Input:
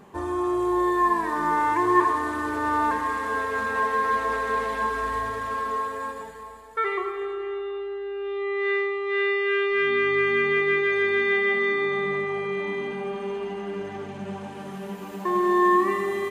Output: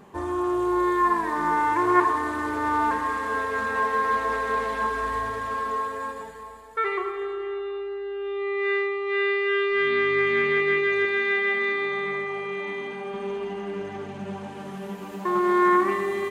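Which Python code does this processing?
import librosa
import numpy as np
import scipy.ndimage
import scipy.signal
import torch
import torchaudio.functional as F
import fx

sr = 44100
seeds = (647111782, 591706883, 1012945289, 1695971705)

y = fx.low_shelf(x, sr, hz=340.0, db=-8.0, at=(11.05, 13.14))
y = fx.doppler_dist(y, sr, depth_ms=0.1)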